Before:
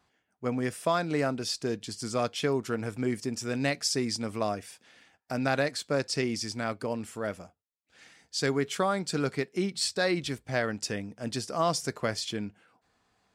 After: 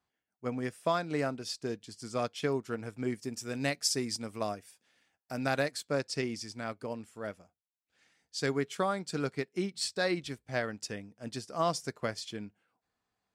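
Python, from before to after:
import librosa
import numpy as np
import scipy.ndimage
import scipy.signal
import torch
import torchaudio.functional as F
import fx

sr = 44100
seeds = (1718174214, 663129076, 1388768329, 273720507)

y = fx.high_shelf(x, sr, hz=10000.0, db=10.5, at=(3.2, 5.85))
y = fx.upward_expand(y, sr, threshold_db=-46.0, expansion=1.5)
y = y * librosa.db_to_amplitude(-2.0)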